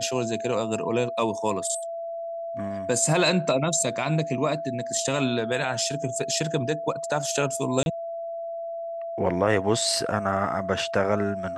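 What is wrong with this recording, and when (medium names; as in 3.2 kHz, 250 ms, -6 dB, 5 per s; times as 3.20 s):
whine 670 Hz -30 dBFS
7.83–7.86 s: dropout 31 ms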